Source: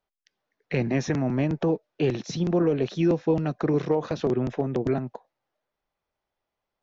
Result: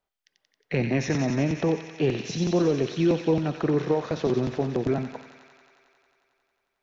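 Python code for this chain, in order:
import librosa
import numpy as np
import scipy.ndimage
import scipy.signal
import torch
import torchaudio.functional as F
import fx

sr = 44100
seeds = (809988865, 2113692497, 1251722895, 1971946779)

y = fx.echo_wet_highpass(x, sr, ms=90, feedback_pct=81, hz=1900.0, wet_db=-3.5)
y = fx.rev_spring(y, sr, rt60_s=1.1, pass_ms=(50,), chirp_ms=50, drr_db=14.0)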